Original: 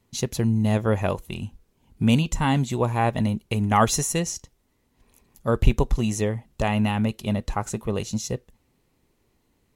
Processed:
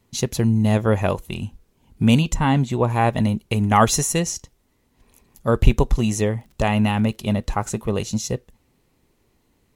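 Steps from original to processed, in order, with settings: 2.34–2.90 s: treble shelf 4.2 kHz -9.5 dB; 6.30–7.97 s: crackle 29 per s -42 dBFS; trim +3.5 dB

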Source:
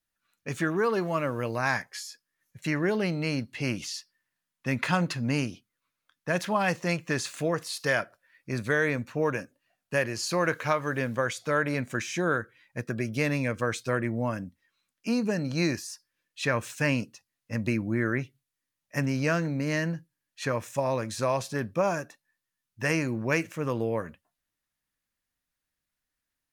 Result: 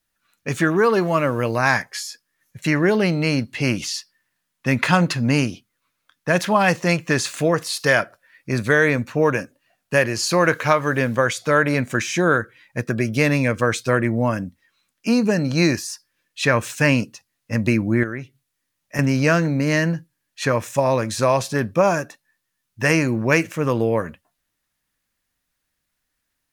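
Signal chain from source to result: 18.03–18.99 s: compression 6:1, threshold -34 dBFS, peak gain reduction 11 dB; trim +9 dB

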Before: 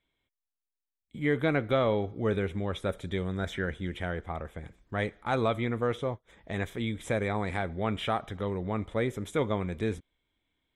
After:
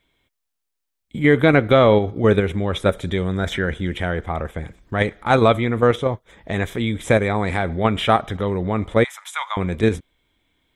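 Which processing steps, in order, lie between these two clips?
9.04–9.57 s: steep high-pass 820 Hz 48 dB/octave; in parallel at +2.5 dB: level held to a coarse grid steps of 14 dB; on the sum: trim +7 dB

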